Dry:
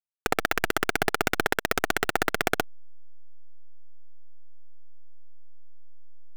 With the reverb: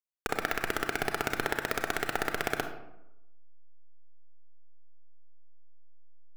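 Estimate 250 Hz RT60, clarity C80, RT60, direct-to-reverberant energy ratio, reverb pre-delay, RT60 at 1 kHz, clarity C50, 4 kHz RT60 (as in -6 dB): 0.95 s, 10.5 dB, 0.90 s, 5.5 dB, 30 ms, 0.85 s, 7.5 dB, 0.50 s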